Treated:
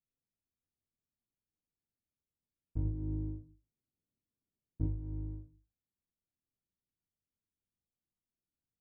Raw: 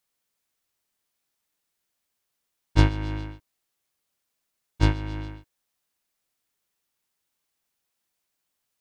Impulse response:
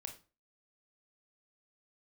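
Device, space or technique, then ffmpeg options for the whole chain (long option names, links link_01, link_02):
television next door: -filter_complex "[0:a]acompressor=threshold=-33dB:ratio=3,lowpass=260[link_01];[1:a]atrim=start_sample=2205[link_02];[link_01][link_02]afir=irnorm=-1:irlink=0,asettb=1/sr,asplit=3[link_03][link_04][link_05];[link_03]atrim=end=2.854[link_06];[link_04]atrim=start=2.85:end=4.87,asetpts=PTS-STARTPTS,afade=type=in:duration=0.004:curve=qsin,afade=type=out:start_time=2.016:duration=0.004:curve=qsin,equalizer=frequency=250:width=0.6:gain=6[link_07];[link_05]atrim=start=4.866[link_08];[link_06][link_07]acrossfade=duration=0.004:curve1=hsin:curve2=qsin[link_09];[link_09][link_08]acrossfade=duration=0.004:curve1=qsin:curve2=hsin,volume=2dB"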